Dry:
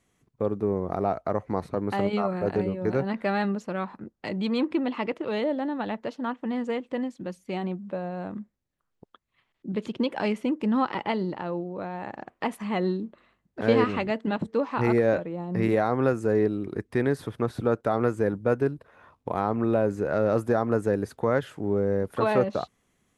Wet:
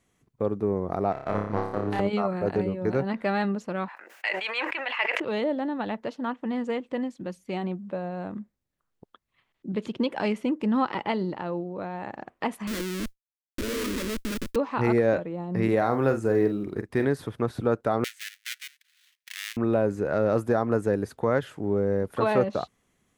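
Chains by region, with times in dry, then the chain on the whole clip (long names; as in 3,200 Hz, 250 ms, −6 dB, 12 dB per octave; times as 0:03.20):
0:01.12–0:02.00: high-pass filter 44 Hz + power curve on the samples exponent 1.4 + flutter between parallel walls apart 5 metres, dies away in 0.68 s
0:03.88–0:05.20: high-pass filter 650 Hz 24 dB per octave + flat-topped bell 2,100 Hz +10.5 dB 1.1 octaves + level that may fall only so fast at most 38 dB per second
0:12.67–0:14.56: comparator with hysteresis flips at −32.5 dBFS + noise that follows the level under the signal 35 dB + phaser with its sweep stopped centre 320 Hz, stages 4
0:15.77–0:17.05: floating-point word with a short mantissa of 6 bits + double-tracking delay 44 ms −9 dB
0:18.04–0:19.57: gap after every zero crossing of 0.24 ms + Chebyshev high-pass filter 1,800 Hz, order 4 + notch filter 7,200 Hz, Q 20
whole clip: no processing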